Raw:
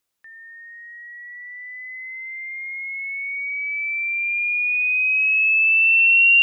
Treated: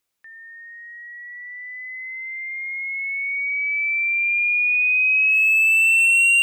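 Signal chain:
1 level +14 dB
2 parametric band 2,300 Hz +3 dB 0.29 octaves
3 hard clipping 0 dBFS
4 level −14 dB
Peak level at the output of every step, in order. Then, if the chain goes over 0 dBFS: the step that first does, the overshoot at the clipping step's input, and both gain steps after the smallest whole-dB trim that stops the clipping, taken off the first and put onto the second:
+4.5, +5.0, 0.0, −14.0 dBFS
step 1, 5.0 dB
step 1 +9 dB, step 4 −9 dB

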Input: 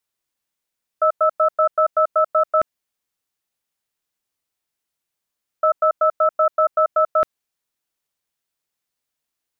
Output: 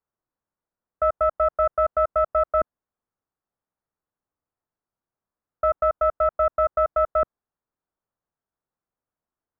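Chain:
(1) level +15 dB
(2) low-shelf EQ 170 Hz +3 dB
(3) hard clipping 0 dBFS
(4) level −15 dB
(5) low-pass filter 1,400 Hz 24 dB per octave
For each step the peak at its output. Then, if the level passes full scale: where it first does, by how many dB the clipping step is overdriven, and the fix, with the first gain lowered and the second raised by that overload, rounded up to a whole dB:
+6.0, +6.0, 0.0, −15.0, −14.0 dBFS
step 1, 6.0 dB
step 1 +9 dB, step 4 −9 dB

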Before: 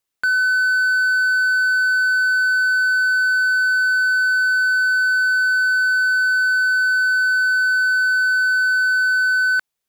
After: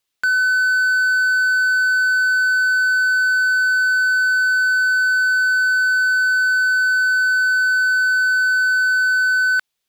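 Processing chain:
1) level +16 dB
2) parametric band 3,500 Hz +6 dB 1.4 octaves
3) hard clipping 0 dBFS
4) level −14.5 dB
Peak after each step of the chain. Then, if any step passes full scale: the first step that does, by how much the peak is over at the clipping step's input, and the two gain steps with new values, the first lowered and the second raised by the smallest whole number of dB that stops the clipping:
+4.0, +5.5, 0.0, −14.5 dBFS
step 1, 5.5 dB
step 1 +10 dB, step 4 −8.5 dB

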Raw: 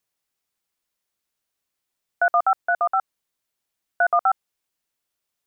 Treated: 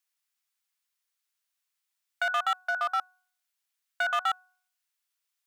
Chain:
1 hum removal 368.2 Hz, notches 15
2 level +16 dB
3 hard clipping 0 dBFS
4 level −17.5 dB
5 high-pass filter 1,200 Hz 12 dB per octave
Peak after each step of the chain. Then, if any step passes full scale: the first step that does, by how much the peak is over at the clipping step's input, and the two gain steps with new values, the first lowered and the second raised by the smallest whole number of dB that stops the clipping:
−10.0, +6.0, 0.0, −17.5, −18.5 dBFS
step 2, 6.0 dB
step 2 +10 dB, step 4 −11.5 dB

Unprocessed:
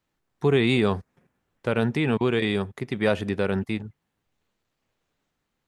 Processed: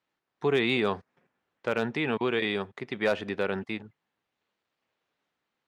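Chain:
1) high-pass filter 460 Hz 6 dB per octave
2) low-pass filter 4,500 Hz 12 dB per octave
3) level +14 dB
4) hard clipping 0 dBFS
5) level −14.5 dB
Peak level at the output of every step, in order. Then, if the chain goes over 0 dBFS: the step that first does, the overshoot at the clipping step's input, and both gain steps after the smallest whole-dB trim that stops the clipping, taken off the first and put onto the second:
−9.0, −9.5, +4.5, 0.0, −14.5 dBFS
step 3, 4.5 dB
step 3 +9 dB, step 5 −9.5 dB

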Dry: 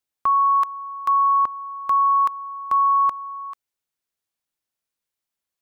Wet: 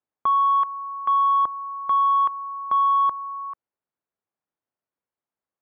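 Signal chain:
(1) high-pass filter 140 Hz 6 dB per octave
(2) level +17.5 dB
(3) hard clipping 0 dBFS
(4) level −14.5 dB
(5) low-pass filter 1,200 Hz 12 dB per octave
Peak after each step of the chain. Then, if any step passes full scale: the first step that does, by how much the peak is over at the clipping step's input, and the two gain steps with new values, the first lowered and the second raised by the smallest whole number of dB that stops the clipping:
−13.5, +4.0, 0.0, −14.5, −15.0 dBFS
step 2, 4.0 dB
step 2 +13.5 dB, step 4 −10.5 dB

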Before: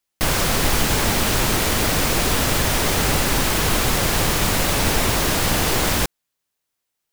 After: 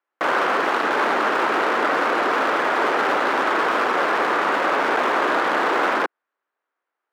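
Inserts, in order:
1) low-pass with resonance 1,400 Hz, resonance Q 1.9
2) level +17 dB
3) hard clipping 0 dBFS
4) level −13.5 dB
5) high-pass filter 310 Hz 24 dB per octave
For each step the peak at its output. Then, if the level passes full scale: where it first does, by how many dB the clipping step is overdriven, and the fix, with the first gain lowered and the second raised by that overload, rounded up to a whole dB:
−7.0, +10.0, 0.0, −13.5, −7.5 dBFS
step 2, 10.0 dB
step 2 +7 dB, step 4 −3.5 dB

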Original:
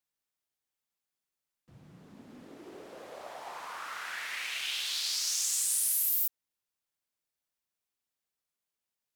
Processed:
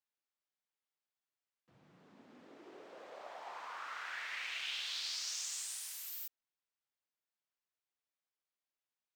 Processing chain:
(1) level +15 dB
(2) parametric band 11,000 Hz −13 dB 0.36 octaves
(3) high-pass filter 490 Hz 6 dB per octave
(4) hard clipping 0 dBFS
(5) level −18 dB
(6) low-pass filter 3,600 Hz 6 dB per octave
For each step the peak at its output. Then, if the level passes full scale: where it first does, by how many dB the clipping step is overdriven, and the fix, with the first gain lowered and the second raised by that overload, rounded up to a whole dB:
−1.0, −4.0, −4.0, −4.0, −22.0, −28.5 dBFS
no step passes full scale

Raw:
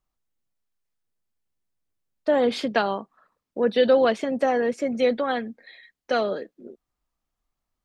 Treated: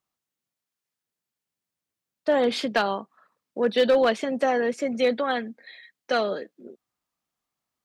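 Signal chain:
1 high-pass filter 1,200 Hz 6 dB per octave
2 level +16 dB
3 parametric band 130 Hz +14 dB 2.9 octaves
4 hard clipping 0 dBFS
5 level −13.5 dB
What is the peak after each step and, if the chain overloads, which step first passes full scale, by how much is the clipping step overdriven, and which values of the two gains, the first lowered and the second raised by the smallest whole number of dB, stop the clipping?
−11.5, +4.5, +5.5, 0.0, −13.5 dBFS
step 2, 5.5 dB
step 2 +10 dB, step 5 −7.5 dB

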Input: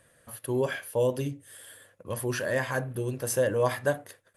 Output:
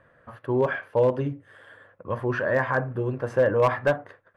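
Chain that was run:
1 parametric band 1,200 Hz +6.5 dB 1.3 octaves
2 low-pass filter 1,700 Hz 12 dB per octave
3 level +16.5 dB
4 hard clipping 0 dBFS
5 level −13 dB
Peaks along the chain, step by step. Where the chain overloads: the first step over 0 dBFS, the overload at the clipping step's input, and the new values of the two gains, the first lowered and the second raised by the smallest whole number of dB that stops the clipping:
−8.5, −9.0, +7.5, 0.0, −13.0 dBFS
step 3, 7.5 dB
step 3 +8.5 dB, step 5 −5 dB

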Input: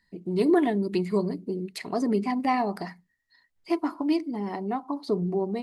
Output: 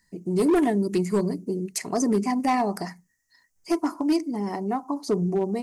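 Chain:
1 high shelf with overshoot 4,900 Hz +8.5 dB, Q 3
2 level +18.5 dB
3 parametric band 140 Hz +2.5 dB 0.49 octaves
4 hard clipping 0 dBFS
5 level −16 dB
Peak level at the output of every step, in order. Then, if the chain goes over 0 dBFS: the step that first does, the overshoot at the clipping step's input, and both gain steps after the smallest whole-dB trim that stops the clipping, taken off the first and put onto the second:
−10.5, +8.0, +8.0, 0.0, −16.0 dBFS
step 2, 8.0 dB
step 2 +10.5 dB, step 5 −8 dB

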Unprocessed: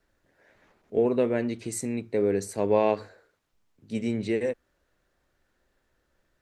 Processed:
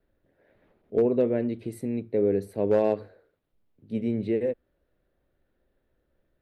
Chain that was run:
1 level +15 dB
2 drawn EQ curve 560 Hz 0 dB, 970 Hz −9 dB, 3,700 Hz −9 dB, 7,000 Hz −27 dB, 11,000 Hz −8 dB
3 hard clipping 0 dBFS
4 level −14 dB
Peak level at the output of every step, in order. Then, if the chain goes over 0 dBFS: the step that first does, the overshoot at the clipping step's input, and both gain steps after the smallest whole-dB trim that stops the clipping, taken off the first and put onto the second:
+4.0, +3.0, 0.0, −14.0 dBFS
step 1, 3.0 dB
step 1 +12 dB, step 4 −11 dB

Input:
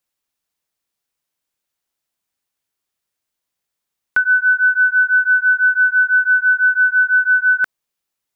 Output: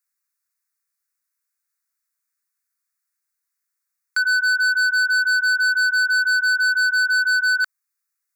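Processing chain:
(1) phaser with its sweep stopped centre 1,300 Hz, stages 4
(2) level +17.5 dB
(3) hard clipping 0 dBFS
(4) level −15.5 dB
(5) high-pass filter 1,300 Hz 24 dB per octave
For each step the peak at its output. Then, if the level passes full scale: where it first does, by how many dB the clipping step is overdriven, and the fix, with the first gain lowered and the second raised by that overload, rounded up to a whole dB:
−7.5, +10.0, 0.0, −15.5, −14.5 dBFS
step 2, 10.0 dB
step 2 +7.5 dB, step 4 −5.5 dB

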